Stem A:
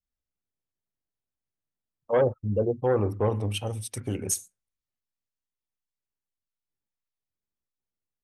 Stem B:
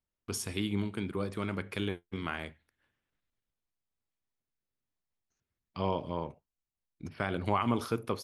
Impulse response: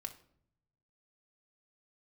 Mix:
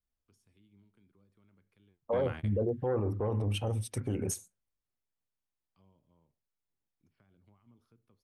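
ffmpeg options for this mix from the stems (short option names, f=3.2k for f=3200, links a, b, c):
-filter_complex "[0:a]acompressor=threshold=-26dB:ratio=3,highshelf=f=2.1k:g=-9.5,volume=2dB,asplit=2[a][b];[1:a]acrossover=split=250[c][d];[d]acompressor=threshold=-43dB:ratio=5[e];[c][e]amix=inputs=2:normalize=0,volume=2.5dB[f];[b]apad=whole_len=363064[g];[f][g]sidechaingate=range=-32dB:threshold=-40dB:ratio=16:detection=peak[h];[a][h]amix=inputs=2:normalize=0,alimiter=limit=-23dB:level=0:latency=1:release=16"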